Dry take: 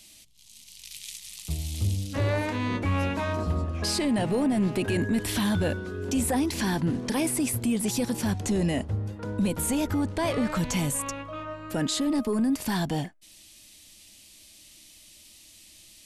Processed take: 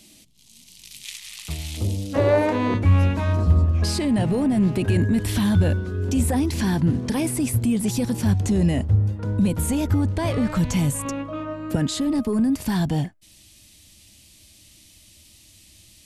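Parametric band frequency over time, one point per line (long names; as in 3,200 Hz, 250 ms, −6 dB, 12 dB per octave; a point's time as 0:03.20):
parametric band +12 dB 2.4 octaves
250 Hz
from 0:01.05 1,600 Hz
from 0:01.77 520 Hz
from 0:02.74 84 Hz
from 0:11.05 250 Hz
from 0:11.75 85 Hz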